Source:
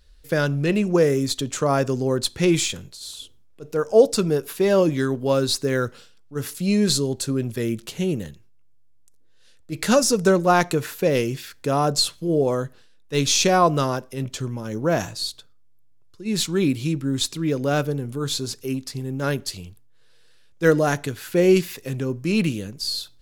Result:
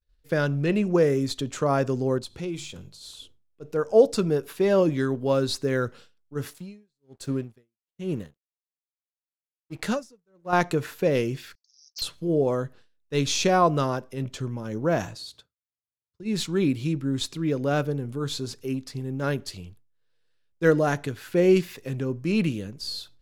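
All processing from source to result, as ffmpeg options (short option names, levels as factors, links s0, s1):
-filter_complex "[0:a]asettb=1/sr,asplit=3[s0][s1][s2];[s0]atrim=end=2.184[s3];[s1]atrim=start=2.18:end=3.04,asetpts=PTS-STARTPTS,afade=t=in:d=0.004:c=qsin,afade=t=out:st=0.856:d=0.004:c=qsin,bandreject=f=50:t=h:w=6,bandreject=f=100:t=h:w=6,bandreject=f=150:t=h:w=6,bandreject=f=200:t=h:w=6,acompressor=threshold=0.02:ratio=2:attack=3.2:release=140:knee=1:detection=peak,equalizer=f=1800:t=o:w=0.43:g=-7.5[s4];[s2]atrim=start=3.036[s5];[s3][s4]acrossfade=d=0.004:c1=hsin:c2=qsin[s6];[s6][s5]acrossfade=d=0.004:c1=qsin:c2=hsin,asettb=1/sr,asplit=3[s7][s8][s9];[s7]atrim=end=6.494[s10];[s8]atrim=start=6.49:end=10.53,asetpts=PTS-STARTPTS,afade=t=in:d=0.004:c=qsin,afade=t=out:st=4.036:d=0.004:c=qsin,aeval=exprs='sgn(val(0))*max(abs(val(0))-0.00596,0)':c=same,aeval=exprs='val(0)*pow(10,-37*(0.5-0.5*cos(2*PI*1.2*n/s))/20)':c=same[s11];[s9]atrim=start=10.526[s12];[s10][s11]acrossfade=d=0.004:c1=hsin:c2=qsin[s13];[s13][s12]acrossfade=d=0.004:c1=qsin:c2=hsin,asettb=1/sr,asplit=3[s14][s15][s16];[s14]atrim=end=11.554[s17];[s15]atrim=start=11.55:end=12.02,asetpts=PTS-STARTPTS,afade=t=in:d=0.004:c=qsin,afade=t=out:st=0.466:d=0.004:c=qsin,asuperpass=centerf=5300:order=8:qfactor=2.9,aeval=exprs='0.075*(abs(mod(val(0)/0.075+3,4)-2)-1)':c=same[s18];[s16]atrim=start=12.016[s19];[s17][s18]acrossfade=d=0.004:c1=hsin:c2=qsin[s20];[s20][s19]acrossfade=d=0.004:c1=qsin:c2=hsin,asettb=1/sr,asplit=3[s21][s22][s23];[s21]atrim=end=15.164[s24];[s22]atrim=start=15.16:end=16.23,asetpts=PTS-STARTPTS,afade=t=in:d=0.004:c=qsin,afade=t=out:st=1.066:d=0.004:c=qsin,highpass=68,asubboost=boost=7.5:cutoff=140,acompressor=threshold=0.0282:ratio=2.5:attack=3.2:release=140:knee=1:detection=peak[s25];[s23]atrim=start=16.226[s26];[s24][s25]acrossfade=d=0.004:c1=hsin:c2=qsin[s27];[s27][s26]acrossfade=d=0.004:c1=qsin:c2=hsin,agate=range=0.0224:threshold=0.00794:ratio=3:detection=peak,highshelf=f=4600:g=-8.5,volume=0.75"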